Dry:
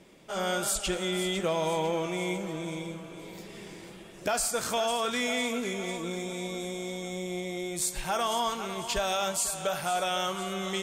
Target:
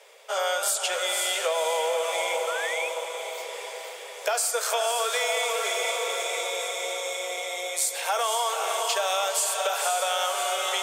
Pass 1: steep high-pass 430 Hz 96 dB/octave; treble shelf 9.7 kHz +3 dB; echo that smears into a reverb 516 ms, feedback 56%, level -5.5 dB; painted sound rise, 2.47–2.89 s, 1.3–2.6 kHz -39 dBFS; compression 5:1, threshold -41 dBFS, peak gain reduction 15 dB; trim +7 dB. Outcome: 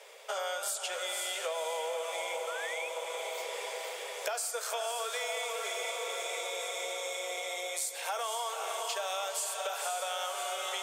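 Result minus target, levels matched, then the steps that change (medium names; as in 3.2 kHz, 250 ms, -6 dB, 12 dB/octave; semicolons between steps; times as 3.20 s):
compression: peak gain reduction +9 dB
change: compression 5:1, threshold -29.5 dBFS, peak gain reduction 6 dB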